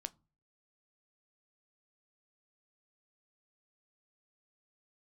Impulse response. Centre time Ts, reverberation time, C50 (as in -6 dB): 2 ms, no single decay rate, 26.5 dB